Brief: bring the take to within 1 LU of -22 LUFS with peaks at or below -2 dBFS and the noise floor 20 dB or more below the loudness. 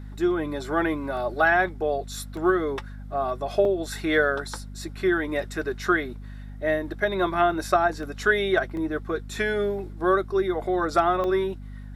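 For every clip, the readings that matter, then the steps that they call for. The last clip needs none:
dropouts 7; longest dropout 1.9 ms; hum 50 Hz; highest harmonic 250 Hz; hum level -36 dBFS; loudness -25.0 LUFS; peak level -8.0 dBFS; loudness target -22.0 LUFS
-> interpolate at 1.17/2.37/3.65/5.43/8.03/8.77/11.24 s, 1.9 ms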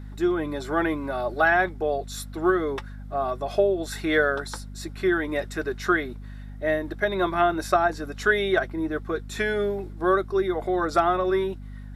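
dropouts 0; hum 50 Hz; highest harmonic 250 Hz; hum level -36 dBFS
-> hum notches 50/100/150/200/250 Hz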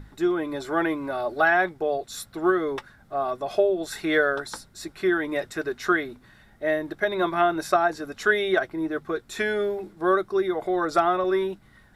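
hum not found; loudness -25.0 LUFS; peak level -8.0 dBFS; loudness target -22.0 LUFS
-> trim +3 dB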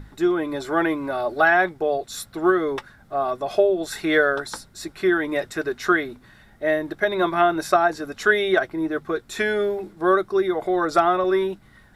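loudness -22.0 LUFS; peak level -5.0 dBFS; noise floor -52 dBFS

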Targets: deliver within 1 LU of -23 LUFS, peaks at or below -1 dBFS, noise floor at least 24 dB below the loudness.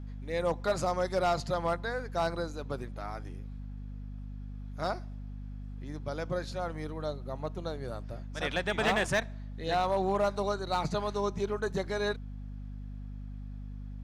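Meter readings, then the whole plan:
clipped samples 0.3%; clipping level -21.0 dBFS; hum 50 Hz; highest harmonic 250 Hz; hum level -38 dBFS; loudness -33.0 LUFS; peak level -21.0 dBFS; loudness target -23.0 LUFS
-> clip repair -21 dBFS; de-hum 50 Hz, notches 5; trim +10 dB

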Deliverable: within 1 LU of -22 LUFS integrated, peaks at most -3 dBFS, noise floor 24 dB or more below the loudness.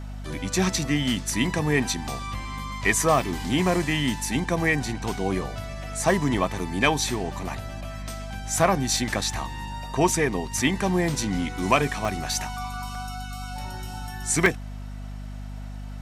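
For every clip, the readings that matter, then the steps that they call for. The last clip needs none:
dropouts 6; longest dropout 1.8 ms; hum 50 Hz; highest harmonic 250 Hz; hum level -33 dBFS; loudness -25.5 LUFS; peak level -5.5 dBFS; loudness target -22.0 LUFS
-> interpolate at 2.59/3.53/9.31/12.05/12.95/14.46 s, 1.8 ms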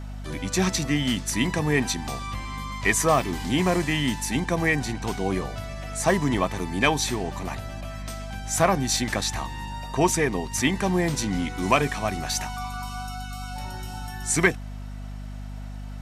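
dropouts 0; hum 50 Hz; highest harmonic 250 Hz; hum level -33 dBFS
-> hum notches 50/100/150/200/250 Hz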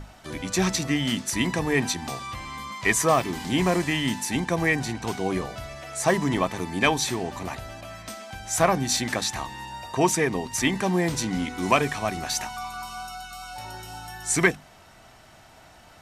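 hum not found; loudness -25.5 LUFS; peak level -5.5 dBFS; loudness target -22.0 LUFS
-> trim +3.5 dB; peak limiter -3 dBFS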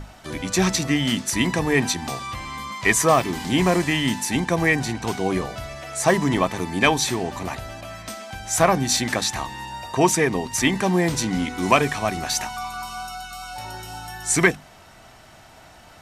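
loudness -22.0 LUFS; peak level -3.0 dBFS; noise floor -48 dBFS

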